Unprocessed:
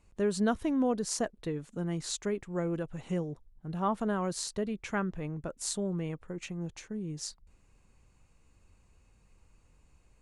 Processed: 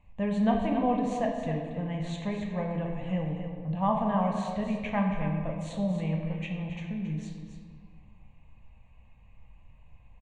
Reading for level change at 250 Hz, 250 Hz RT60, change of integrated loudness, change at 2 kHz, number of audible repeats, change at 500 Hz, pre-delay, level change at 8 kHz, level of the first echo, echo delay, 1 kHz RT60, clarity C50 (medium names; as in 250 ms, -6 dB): +4.0 dB, 2.2 s, +3.5 dB, +1.5 dB, 1, +1.5 dB, 4 ms, under -15 dB, -9.0 dB, 275 ms, 1.6 s, 3.0 dB